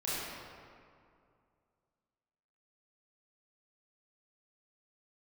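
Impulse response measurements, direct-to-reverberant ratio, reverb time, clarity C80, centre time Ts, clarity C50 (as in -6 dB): -10.5 dB, 2.3 s, -2.0 dB, 0.159 s, -4.5 dB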